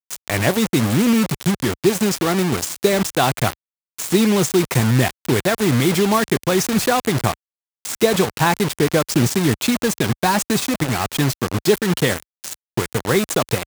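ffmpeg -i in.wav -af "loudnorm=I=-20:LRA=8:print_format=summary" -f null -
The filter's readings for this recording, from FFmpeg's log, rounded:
Input Integrated:    -19.0 LUFS
Input True Peak:      -2.4 dBTP
Input LRA:             2.3 LU
Input Threshold:     -29.2 LUFS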